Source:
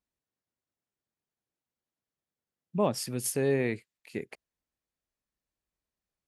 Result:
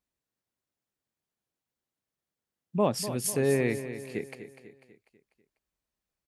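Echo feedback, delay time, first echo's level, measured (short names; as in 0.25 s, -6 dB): 49%, 0.247 s, -11.5 dB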